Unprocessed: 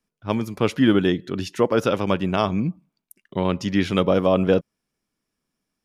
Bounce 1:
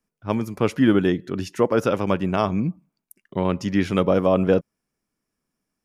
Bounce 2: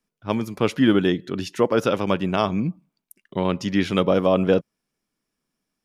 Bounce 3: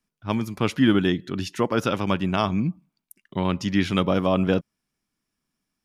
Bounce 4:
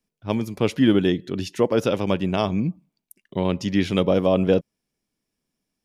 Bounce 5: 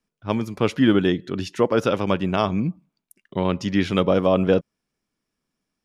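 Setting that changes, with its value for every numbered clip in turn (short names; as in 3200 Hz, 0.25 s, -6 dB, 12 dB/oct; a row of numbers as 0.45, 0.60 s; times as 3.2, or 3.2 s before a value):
bell, frequency: 3600, 73, 490, 1300, 14000 Hz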